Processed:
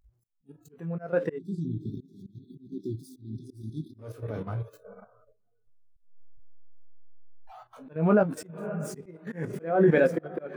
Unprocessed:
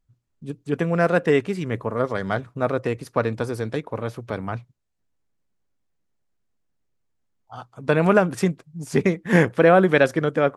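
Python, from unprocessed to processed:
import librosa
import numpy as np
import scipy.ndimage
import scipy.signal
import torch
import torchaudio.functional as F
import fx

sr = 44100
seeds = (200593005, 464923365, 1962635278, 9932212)

y = x + 0.5 * 10.0 ** (-28.0 / 20.0) * np.sign(x)
y = fx.high_shelf(y, sr, hz=9800.0, db=8.0)
y = fx.echo_diffused(y, sr, ms=567, feedback_pct=40, wet_db=-8.0)
y = fx.noise_reduce_blind(y, sr, reduce_db=18)
y = fx.brickwall_bandstop(y, sr, low_hz=400.0, high_hz=3300.0, at=(1.36, 3.98), fade=0.02)
y = fx.doubler(y, sr, ms=19.0, db=-7.5)
y = fx.level_steps(y, sr, step_db=9)
y = fx.auto_swell(y, sr, attack_ms=234.0)
y = fx.spectral_expand(y, sr, expansion=1.5)
y = y * 10.0 ** (-3.0 / 20.0)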